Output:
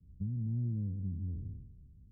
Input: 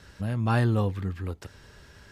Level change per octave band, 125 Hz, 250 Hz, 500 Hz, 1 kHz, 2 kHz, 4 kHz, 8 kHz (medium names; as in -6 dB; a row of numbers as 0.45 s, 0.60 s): -8.0 dB, -10.5 dB, -28.0 dB, under -40 dB, under -40 dB, under -40 dB, no reading